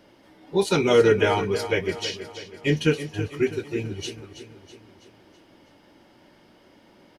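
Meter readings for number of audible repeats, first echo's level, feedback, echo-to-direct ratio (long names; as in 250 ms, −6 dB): 4, −12.0 dB, 51%, −10.5 dB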